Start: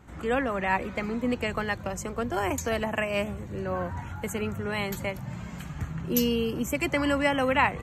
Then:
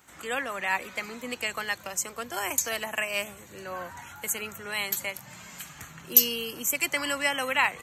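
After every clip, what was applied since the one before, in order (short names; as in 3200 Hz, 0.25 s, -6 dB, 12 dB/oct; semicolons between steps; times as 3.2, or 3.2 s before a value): tilt +4.5 dB/oct; gain -3 dB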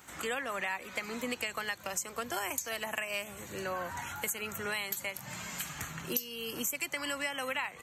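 compressor 8:1, threshold -36 dBFS, peak gain reduction 23.5 dB; gain +4 dB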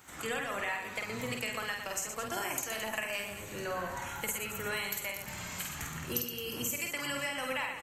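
octaver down 1 oct, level -5 dB; reverse bouncing-ball echo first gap 50 ms, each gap 1.4×, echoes 5; gain -2 dB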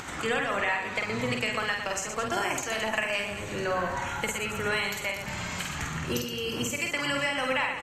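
air absorption 71 m; upward compressor, threshold -39 dBFS; gain +8 dB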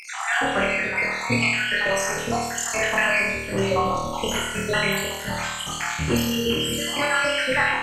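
random spectral dropouts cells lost 64%; on a send: flutter echo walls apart 4.4 m, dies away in 0.98 s; on the sum: gain +6.5 dB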